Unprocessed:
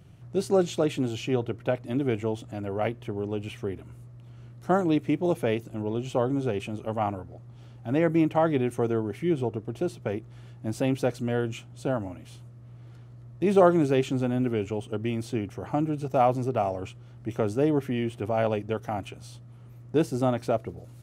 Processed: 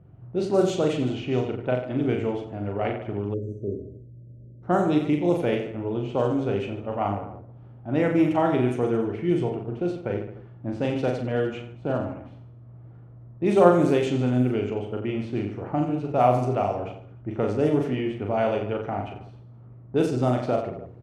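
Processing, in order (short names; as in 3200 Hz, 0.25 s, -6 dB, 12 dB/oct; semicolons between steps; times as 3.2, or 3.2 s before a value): reverse bouncing-ball echo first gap 40 ms, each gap 1.2×, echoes 5; low-pass opened by the level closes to 1000 Hz, open at -16 dBFS; spectral delete 3.34–4.63, 640–5800 Hz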